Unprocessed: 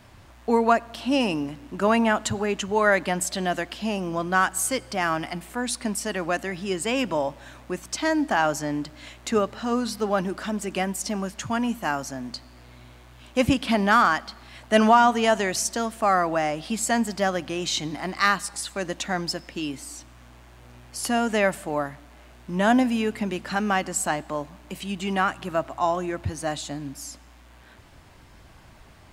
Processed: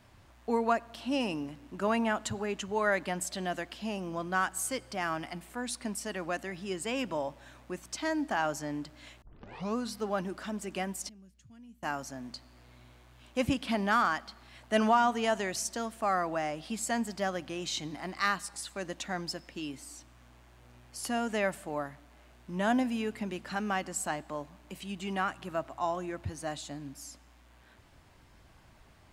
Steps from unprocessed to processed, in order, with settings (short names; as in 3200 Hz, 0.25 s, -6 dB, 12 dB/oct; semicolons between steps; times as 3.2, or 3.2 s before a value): 9.22 tape start 0.54 s; 11.09–11.83 passive tone stack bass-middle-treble 10-0-1; gain -8.5 dB